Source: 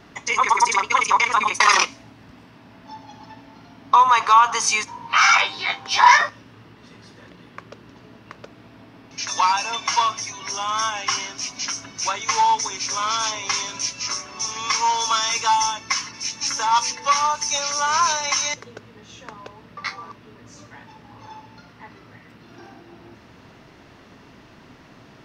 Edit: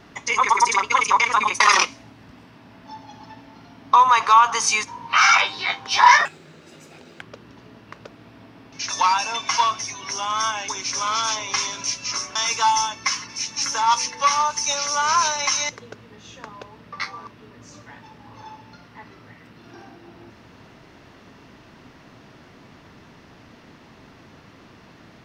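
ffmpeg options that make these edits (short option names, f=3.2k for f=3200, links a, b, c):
-filter_complex "[0:a]asplit=5[a][b][c][d][e];[a]atrim=end=6.254[f];[b]atrim=start=6.25:end=7.6,asetpts=PTS-STARTPTS,asetrate=61740,aresample=44100[g];[c]atrim=start=7.596:end=11.072[h];[d]atrim=start=12.638:end=14.312[i];[e]atrim=start=15.198[j];[f][g]acrossfade=d=0.004:c1=hsin:c2=hsin[k];[k][h]acrossfade=d=0.004:c1=hsin:c2=hsin[l];[l][i]acrossfade=d=0.004:c1=hsin:c2=hsin[m];[m][j]acrossfade=d=0.004:c1=hsin:c2=hsin"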